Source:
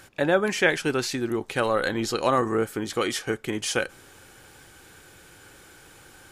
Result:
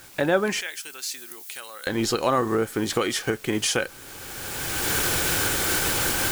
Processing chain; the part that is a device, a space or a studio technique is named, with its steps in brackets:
cheap recorder with automatic gain (white noise bed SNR 23 dB; camcorder AGC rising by 21 dB per second)
0:00.61–0:01.87: first difference

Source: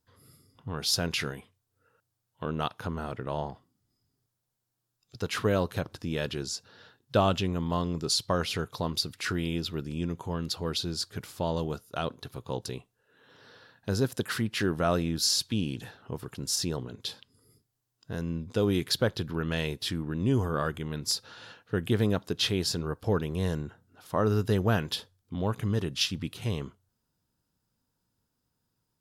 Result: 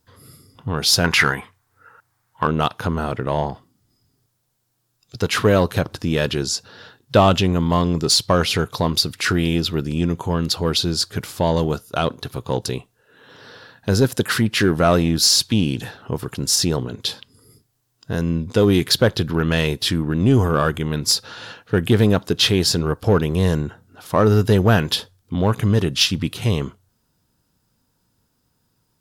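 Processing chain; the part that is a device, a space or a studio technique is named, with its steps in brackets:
0:01.04–0:02.47: flat-topped bell 1,300 Hz +10.5 dB
parallel distortion (in parallel at −5.5 dB: hard clipping −24.5 dBFS, distortion −11 dB)
on the sum: level +8 dB

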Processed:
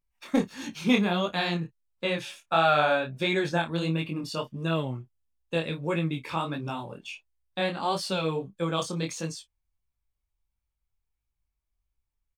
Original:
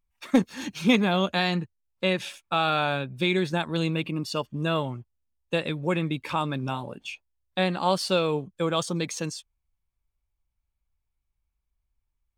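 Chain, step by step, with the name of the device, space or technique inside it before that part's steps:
0:02.39–0:03.60: graphic EQ with 15 bands 630 Hz +8 dB, 1,600 Hz +6 dB, 6,300 Hz +5 dB
double-tracked vocal (double-tracking delay 31 ms −13.5 dB; chorus effect 1.5 Hz, delay 17.5 ms, depth 7.6 ms)

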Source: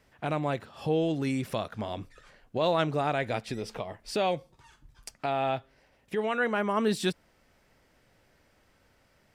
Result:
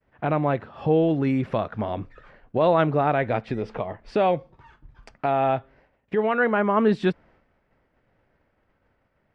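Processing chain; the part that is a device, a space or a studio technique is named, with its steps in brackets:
hearing-loss simulation (low-pass filter 1,900 Hz 12 dB per octave; downward expander −58 dBFS)
level +7 dB

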